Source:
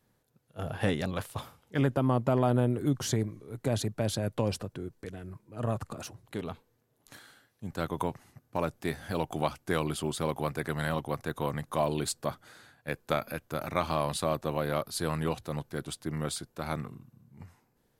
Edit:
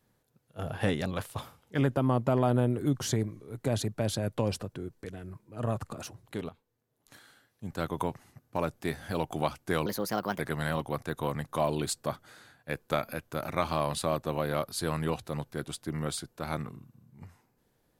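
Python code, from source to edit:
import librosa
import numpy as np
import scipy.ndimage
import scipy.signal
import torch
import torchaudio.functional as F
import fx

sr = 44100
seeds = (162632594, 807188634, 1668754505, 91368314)

y = fx.edit(x, sr, fx.fade_in_from(start_s=6.49, length_s=1.18, floor_db=-14.0),
    fx.speed_span(start_s=9.86, length_s=0.72, speed=1.35), tone=tone)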